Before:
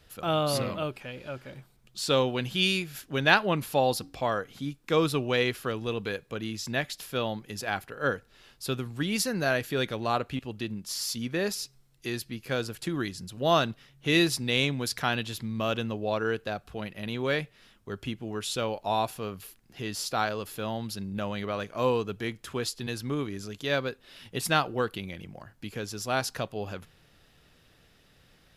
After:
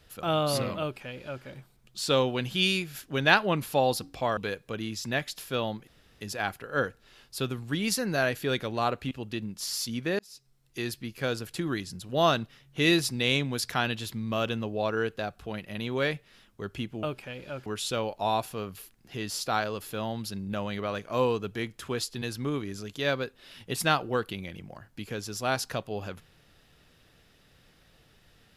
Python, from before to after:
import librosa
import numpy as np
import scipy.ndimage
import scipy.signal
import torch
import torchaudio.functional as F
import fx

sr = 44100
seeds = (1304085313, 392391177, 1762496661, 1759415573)

y = fx.edit(x, sr, fx.duplicate(start_s=0.81, length_s=0.63, to_s=18.31),
    fx.cut(start_s=4.37, length_s=1.62),
    fx.insert_room_tone(at_s=7.49, length_s=0.34),
    fx.fade_in_span(start_s=11.47, length_s=0.61), tone=tone)